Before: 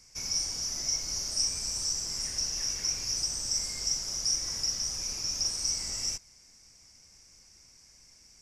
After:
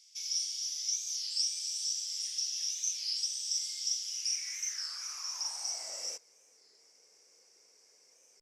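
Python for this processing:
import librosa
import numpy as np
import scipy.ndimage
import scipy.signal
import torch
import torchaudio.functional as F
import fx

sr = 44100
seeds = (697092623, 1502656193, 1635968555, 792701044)

y = fx.filter_sweep_highpass(x, sr, from_hz=3400.0, to_hz=450.0, start_s=3.99, end_s=6.26, q=5.4)
y = fx.record_warp(y, sr, rpm=33.33, depth_cents=160.0)
y = y * 10.0 ** (-6.5 / 20.0)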